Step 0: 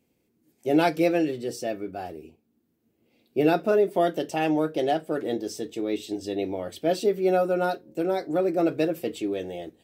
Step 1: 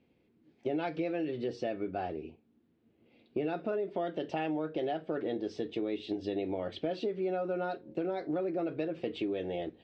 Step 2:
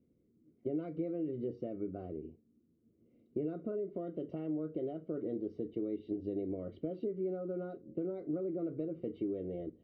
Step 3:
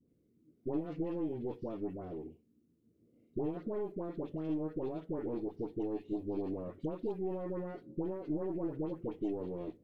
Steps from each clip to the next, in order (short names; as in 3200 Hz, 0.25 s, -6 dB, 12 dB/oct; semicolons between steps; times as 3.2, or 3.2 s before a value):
LPF 3800 Hz 24 dB/oct; in parallel at +2 dB: limiter -21 dBFS, peak gain reduction 11 dB; on the sum: compressor, threshold -25 dBFS, peak gain reduction 12 dB; gain -5.5 dB
running mean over 52 samples
tracing distortion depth 0.23 ms; dispersion highs, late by 83 ms, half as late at 1000 Hz; reverb, pre-delay 7 ms, DRR 18 dB